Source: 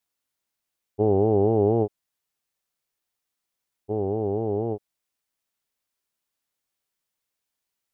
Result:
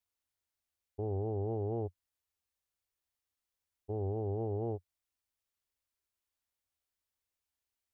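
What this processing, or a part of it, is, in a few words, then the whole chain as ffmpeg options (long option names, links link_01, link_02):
car stereo with a boomy subwoofer: -af "lowshelf=frequency=110:width_type=q:width=3:gain=7,alimiter=limit=-22dB:level=0:latency=1:release=18,volume=-7.5dB"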